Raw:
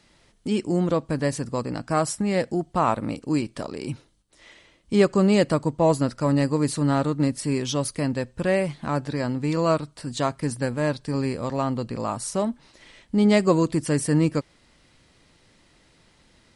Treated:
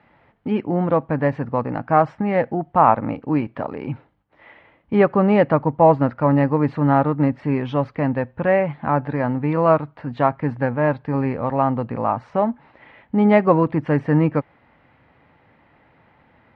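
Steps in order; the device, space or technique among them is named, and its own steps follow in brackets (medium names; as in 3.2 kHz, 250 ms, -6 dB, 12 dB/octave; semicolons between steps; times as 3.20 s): bass cabinet (cabinet simulation 87–2200 Hz, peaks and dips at 190 Hz -4 dB, 360 Hz -6 dB, 820 Hz +7 dB); trim +5.5 dB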